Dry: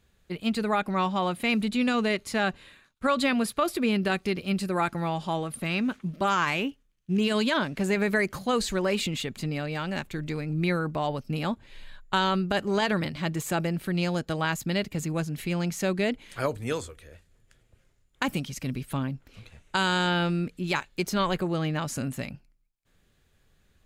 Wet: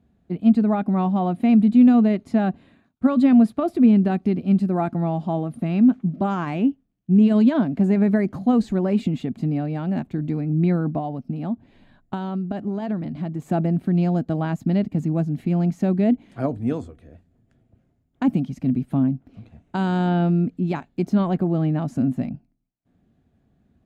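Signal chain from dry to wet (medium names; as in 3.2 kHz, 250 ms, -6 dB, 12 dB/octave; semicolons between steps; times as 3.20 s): high-pass 89 Hz 12 dB/octave; tilt EQ -3.5 dB/octave; 10.98–13.42 s: compression 5:1, threshold -25 dBFS, peak gain reduction 9.5 dB; small resonant body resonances 250/690 Hz, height 13 dB, ringing for 25 ms; trim -6.5 dB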